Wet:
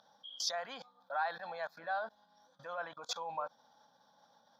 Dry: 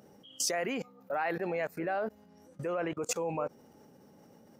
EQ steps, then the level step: two resonant band-passes 2.1 kHz, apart 1.4 oct; static phaser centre 1.9 kHz, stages 8; +15.0 dB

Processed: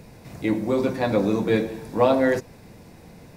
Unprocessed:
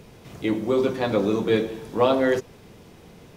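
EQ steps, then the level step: graphic EQ with 31 bands 400 Hz -7 dB, 1.25 kHz -6 dB, 3.15 kHz -11 dB, 6.3 kHz -3 dB; +2.5 dB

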